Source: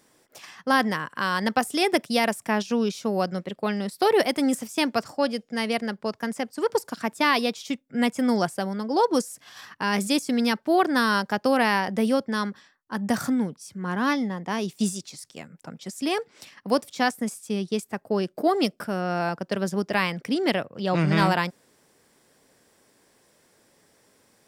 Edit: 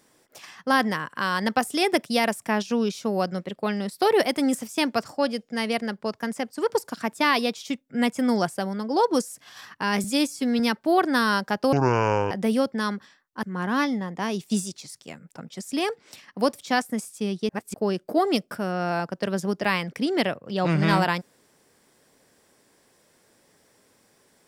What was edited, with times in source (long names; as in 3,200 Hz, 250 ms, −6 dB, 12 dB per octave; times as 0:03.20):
0:10.04–0:10.41: time-stretch 1.5×
0:11.54–0:11.85: play speed 53%
0:12.97–0:13.72: remove
0:17.78–0:18.03: reverse